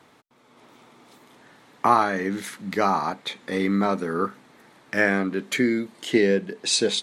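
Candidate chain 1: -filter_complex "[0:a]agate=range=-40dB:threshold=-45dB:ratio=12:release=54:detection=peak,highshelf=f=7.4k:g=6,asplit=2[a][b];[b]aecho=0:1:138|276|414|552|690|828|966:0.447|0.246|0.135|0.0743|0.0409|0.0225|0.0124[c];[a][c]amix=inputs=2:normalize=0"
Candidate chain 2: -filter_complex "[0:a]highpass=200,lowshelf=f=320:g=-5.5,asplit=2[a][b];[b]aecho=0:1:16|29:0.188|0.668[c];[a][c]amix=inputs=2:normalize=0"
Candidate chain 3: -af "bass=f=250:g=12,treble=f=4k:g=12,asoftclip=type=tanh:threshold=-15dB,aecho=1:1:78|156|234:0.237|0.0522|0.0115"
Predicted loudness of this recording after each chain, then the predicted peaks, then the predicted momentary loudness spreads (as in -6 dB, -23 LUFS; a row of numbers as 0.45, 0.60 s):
-22.5, -24.0, -23.0 LUFS; -4.5, -4.0, -13.0 dBFS; 9, 10, 7 LU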